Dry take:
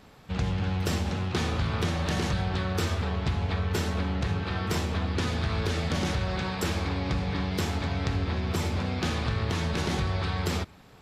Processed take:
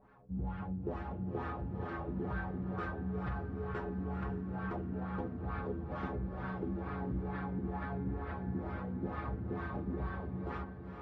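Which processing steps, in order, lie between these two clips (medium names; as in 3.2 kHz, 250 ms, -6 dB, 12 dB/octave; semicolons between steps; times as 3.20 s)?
inharmonic resonator 62 Hz, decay 0.28 s, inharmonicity 0.008; LFO low-pass sine 2.2 Hz 250–1500 Hz; echo that smears into a reverb 454 ms, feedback 47%, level -7 dB; trim -4 dB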